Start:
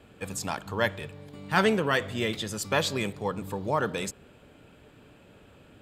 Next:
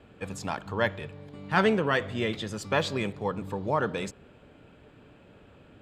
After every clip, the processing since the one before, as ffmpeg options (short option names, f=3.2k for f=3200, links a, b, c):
-af "aemphasis=mode=reproduction:type=50fm"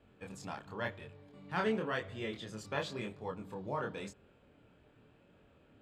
-af "flanger=delay=22.5:depth=5.6:speed=0.93,volume=-7.5dB"